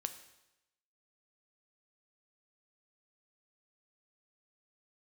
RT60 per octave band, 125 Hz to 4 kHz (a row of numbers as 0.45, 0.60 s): 0.95, 0.90, 0.90, 0.90, 0.90, 0.90 s